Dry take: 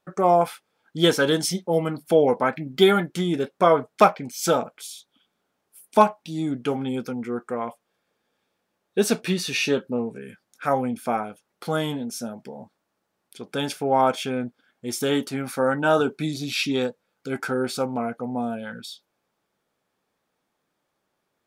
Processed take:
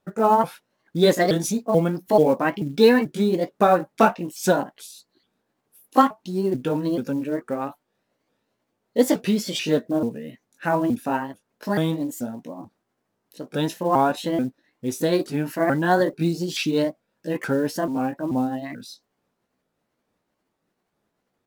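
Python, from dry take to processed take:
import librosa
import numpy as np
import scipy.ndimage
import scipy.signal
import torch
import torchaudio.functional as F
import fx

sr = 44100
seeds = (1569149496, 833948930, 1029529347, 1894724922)

y = fx.pitch_ramps(x, sr, semitones=5.0, every_ms=436)
y = fx.low_shelf(y, sr, hz=480.0, db=10.0)
y = fx.quant_float(y, sr, bits=4)
y = F.gain(torch.from_numpy(y), -2.0).numpy()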